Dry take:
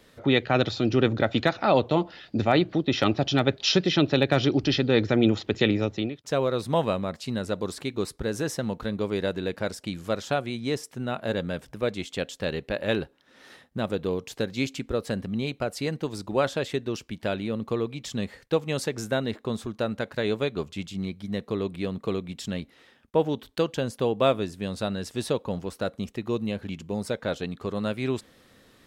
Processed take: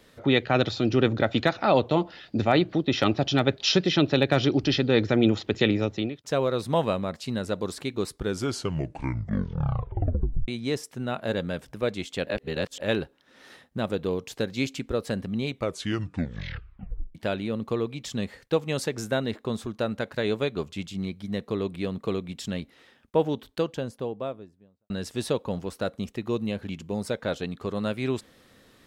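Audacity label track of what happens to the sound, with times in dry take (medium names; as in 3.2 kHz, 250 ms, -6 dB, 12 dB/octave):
8.100000	8.100000	tape stop 2.38 s
12.270000	12.800000	reverse
15.470000	15.470000	tape stop 1.68 s
23.160000	24.900000	studio fade out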